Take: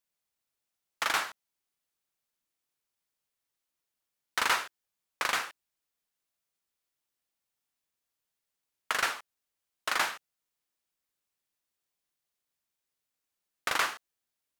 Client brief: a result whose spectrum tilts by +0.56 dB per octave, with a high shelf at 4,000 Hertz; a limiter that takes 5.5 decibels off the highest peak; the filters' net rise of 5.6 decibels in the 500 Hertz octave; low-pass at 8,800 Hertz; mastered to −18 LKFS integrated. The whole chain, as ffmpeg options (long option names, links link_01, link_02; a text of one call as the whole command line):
ffmpeg -i in.wav -af "lowpass=8800,equalizer=frequency=500:width_type=o:gain=7,highshelf=frequency=4000:gain=3.5,volume=14dB,alimiter=limit=-2.5dB:level=0:latency=1" out.wav